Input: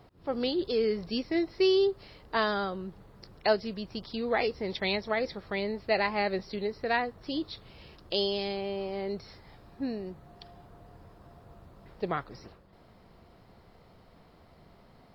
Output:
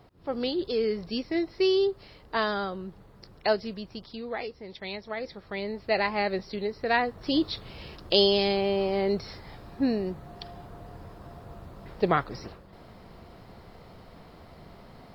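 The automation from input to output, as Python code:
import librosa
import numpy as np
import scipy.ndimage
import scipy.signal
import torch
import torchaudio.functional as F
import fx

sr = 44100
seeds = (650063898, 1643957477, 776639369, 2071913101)

y = fx.gain(x, sr, db=fx.line((3.68, 0.5), (4.66, -9.0), (5.97, 1.5), (6.76, 1.5), (7.36, 8.0)))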